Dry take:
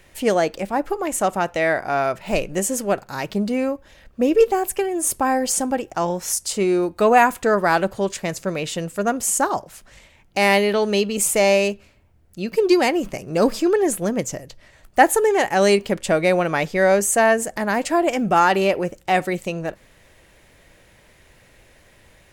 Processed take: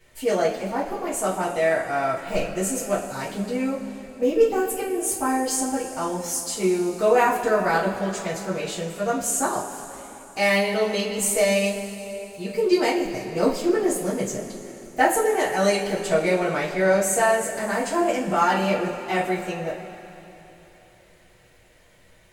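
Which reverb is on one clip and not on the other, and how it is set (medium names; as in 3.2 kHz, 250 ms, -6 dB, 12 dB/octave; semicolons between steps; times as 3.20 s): two-slope reverb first 0.28 s, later 3.5 s, from -18 dB, DRR -9.5 dB; trim -13.5 dB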